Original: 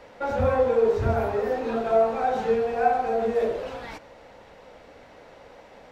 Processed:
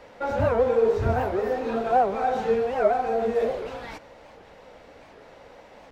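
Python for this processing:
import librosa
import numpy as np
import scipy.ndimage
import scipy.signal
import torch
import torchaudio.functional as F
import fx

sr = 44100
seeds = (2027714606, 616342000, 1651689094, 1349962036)

y = fx.record_warp(x, sr, rpm=78.0, depth_cents=250.0)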